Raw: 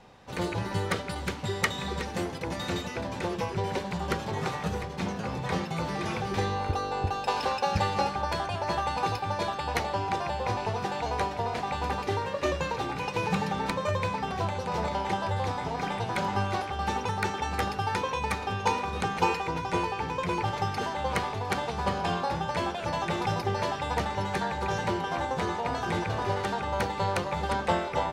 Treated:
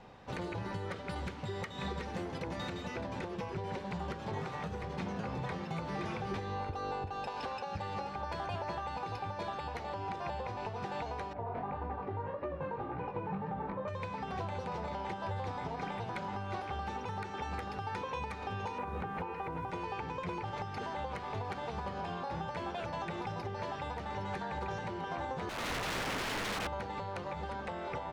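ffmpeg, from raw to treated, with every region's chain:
ffmpeg -i in.wav -filter_complex "[0:a]asettb=1/sr,asplit=3[link_01][link_02][link_03];[link_01]atrim=end=11.334[link_04];[link_02]atrim=start=11.33:end=13.88,asetpts=PTS-STARTPTS,afade=type=in:duration=0.004:curve=qsin,afade=type=out:start_time=2.546:duration=0.004:curve=qsin,lowpass=1300,flanger=delay=16.5:depth=5:speed=1.8[link_05];[link_03]atrim=start=13.876[link_06];[link_04][link_05]acrossfade=duration=0.004:curve1=hsin:curve2=qsin[link_07];[link_07][link_06]acrossfade=duration=0.004:curve1=qsin:curve2=hsin,asettb=1/sr,asplit=3[link_08][link_09][link_10];[link_08]atrim=end=18.784[link_11];[link_09]atrim=start=18.78:end=19.71,asetpts=PTS-STARTPTS,afade=type=in:duration=0.004:curve=qsin,afade=type=out:start_time=0.926:duration=0.004:curve=qsin,lowpass=2000,acontrast=42,acrusher=bits=9:dc=4:mix=0:aa=0.000001[link_12];[link_10]atrim=start=19.706[link_13];[link_11][link_12]acrossfade=duration=0.004:curve1=hsin:curve2=qsin[link_14];[link_14][link_13]acrossfade=duration=0.004:curve1=qsin:curve2=hsin,asettb=1/sr,asplit=3[link_15][link_16][link_17];[link_15]atrim=end=25.494[link_18];[link_16]atrim=start=25.49:end=26.67,asetpts=PTS-STARTPTS,afade=type=in:duration=0.004:curve=qsin,afade=type=out:start_time=1.176:duration=0.004:curve=qsin,lowpass=2800,aeval=exprs='(mod(26.6*val(0)+1,2)-1)/26.6':channel_layout=same[link_19];[link_17]atrim=start=26.666[link_20];[link_18][link_19]acrossfade=duration=0.004:curve1=hsin:curve2=qsin[link_21];[link_21][link_20]acrossfade=duration=0.004:curve1=qsin:curve2=hsin,aemphasis=mode=reproduction:type=50kf,acompressor=threshold=-31dB:ratio=6,alimiter=level_in=4.5dB:limit=-24dB:level=0:latency=1:release=257,volume=-4.5dB" out.wav

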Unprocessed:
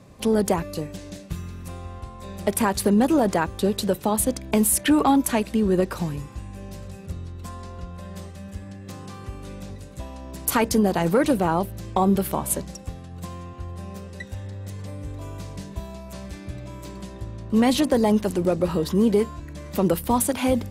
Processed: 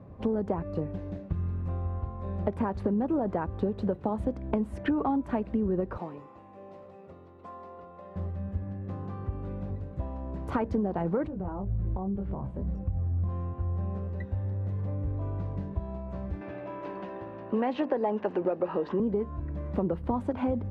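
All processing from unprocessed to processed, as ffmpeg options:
ffmpeg -i in.wav -filter_complex "[0:a]asettb=1/sr,asplit=3[link_01][link_02][link_03];[link_01]atrim=end=5.984[link_04];[link_02]atrim=start=5.98:end=8.16,asetpts=PTS-STARTPTS,afade=type=in:duration=0.004:curve=qsin,afade=type=out:start_time=2.176:duration=0.004:curve=qsin,highpass=440,bandreject=frequency=1600:width=7[link_05];[link_03]atrim=start=8.156[link_06];[link_04][link_05]acrossfade=duration=0.004:curve1=hsin:curve2=qsin[link_07];[link_07][link_06]acrossfade=duration=0.004:curve1=qsin:curve2=hsin,asettb=1/sr,asplit=3[link_08][link_09][link_10];[link_08]atrim=end=11.274[link_11];[link_09]atrim=start=11.27:end=13.29,asetpts=PTS-STARTPTS,afade=type=in:duration=0.004:curve=qsin,afade=type=out:start_time=2.016:duration=0.004:curve=qsin,flanger=delay=19.5:depth=2.1:speed=2.1,acompressor=threshold=-35dB:ratio=5:attack=3.2:release=140:knee=1:detection=peak,aemphasis=mode=reproduction:type=bsi[link_12];[link_10]atrim=start=13.286[link_13];[link_11][link_12]acrossfade=duration=0.004:curve1=hsin:curve2=qsin[link_14];[link_14][link_13]acrossfade=duration=0.004:curve1=qsin:curve2=hsin,asettb=1/sr,asplit=3[link_15][link_16][link_17];[link_15]atrim=end=16.414[link_18];[link_16]atrim=start=16.41:end=19,asetpts=PTS-STARTPTS,afade=type=in:duration=0.004:curve=qsin,afade=type=out:start_time=2.586:duration=0.004:curve=qsin,highpass=380,equalizer=frequency=850:width_type=q:width=4:gain=3,equalizer=frequency=1700:width_type=q:width=4:gain=6,equalizer=frequency=2700:width_type=q:width=4:gain=8,lowpass=frequency=6500:width=0.5412,lowpass=frequency=6500:width=1.3066,acontrast=39[link_19];[link_17]atrim=start=18.996[link_20];[link_18][link_19]acrossfade=duration=0.004:curve1=hsin:curve2=qsin[link_21];[link_21][link_20]acrossfade=duration=0.004:curve1=qsin:curve2=hsin,lowpass=1100,equalizer=frequency=84:width=2.7:gain=6.5,acompressor=threshold=-25dB:ratio=6" out.wav

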